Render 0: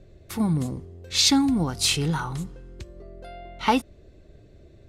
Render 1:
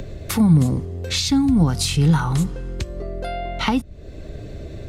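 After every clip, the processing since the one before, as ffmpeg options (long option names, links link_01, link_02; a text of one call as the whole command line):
ffmpeg -i in.wav -filter_complex "[0:a]asplit=2[link_01][link_02];[link_02]acompressor=mode=upward:threshold=-31dB:ratio=2.5,volume=0dB[link_03];[link_01][link_03]amix=inputs=2:normalize=0,bandreject=frequency=360:width=12,acrossover=split=200[link_04][link_05];[link_05]acompressor=threshold=-28dB:ratio=8[link_06];[link_04][link_06]amix=inputs=2:normalize=0,volume=6dB" out.wav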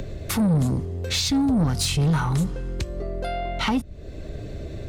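ffmpeg -i in.wav -af "asoftclip=type=tanh:threshold=-16.5dB" out.wav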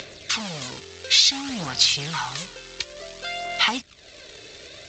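ffmpeg -i in.wav -af "aresample=16000,acrusher=bits=5:mode=log:mix=0:aa=0.000001,aresample=44100,aphaser=in_gain=1:out_gain=1:delay=2.3:decay=0.41:speed=0.56:type=sinusoidal,bandpass=frequency=3800:width_type=q:width=0.9:csg=0,volume=9dB" out.wav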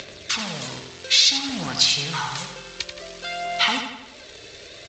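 ffmpeg -i in.wav -filter_complex "[0:a]asplit=2[link_01][link_02];[link_02]adelay=86,lowpass=frequency=4900:poles=1,volume=-6dB,asplit=2[link_03][link_04];[link_04]adelay=86,lowpass=frequency=4900:poles=1,volume=0.55,asplit=2[link_05][link_06];[link_06]adelay=86,lowpass=frequency=4900:poles=1,volume=0.55,asplit=2[link_07][link_08];[link_08]adelay=86,lowpass=frequency=4900:poles=1,volume=0.55,asplit=2[link_09][link_10];[link_10]adelay=86,lowpass=frequency=4900:poles=1,volume=0.55,asplit=2[link_11][link_12];[link_12]adelay=86,lowpass=frequency=4900:poles=1,volume=0.55,asplit=2[link_13][link_14];[link_14]adelay=86,lowpass=frequency=4900:poles=1,volume=0.55[link_15];[link_01][link_03][link_05][link_07][link_09][link_11][link_13][link_15]amix=inputs=8:normalize=0" out.wav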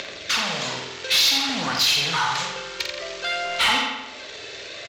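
ffmpeg -i in.wav -filter_complex "[0:a]asplit=2[link_01][link_02];[link_02]highpass=frequency=720:poles=1,volume=12dB,asoftclip=type=tanh:threshold=-4dB[link_03];[link_01][link_03]amix=inputs=2:normalize=0,lowpass=frequency=3500:poles=1,volume=-6dB,asoftclip=type=tanh:threshold=-15dB,asplit=2[link_04][link_05];[link_05]adelay=48,volume=-5.5dB[link_06];[link_04][link_06]amix=inputs=2:normalize=0" out.wav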